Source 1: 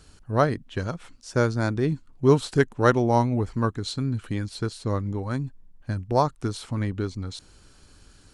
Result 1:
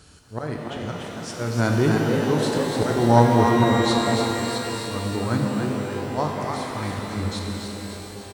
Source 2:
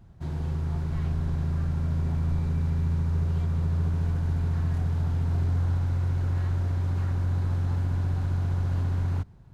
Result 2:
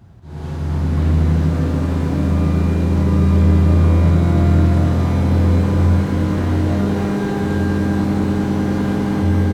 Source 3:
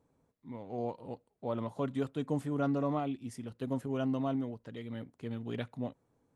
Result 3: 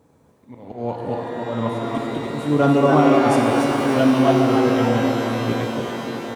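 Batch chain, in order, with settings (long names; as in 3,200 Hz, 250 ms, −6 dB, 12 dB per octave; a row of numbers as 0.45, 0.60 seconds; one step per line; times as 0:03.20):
high-pass filter 68 Hz 12 dB per octave
volume swells 272 ms
on a send: echo with shifted repeats 288 ms, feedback 40%, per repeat +110 Hz, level −5.5 dB
on the sum: reverb with rising layers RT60 3.9 s, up +12 semitones, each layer −8 dB, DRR 0 dB
normalise the peak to −3 dBFS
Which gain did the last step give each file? +3.5, +8.5, +15.5 decibels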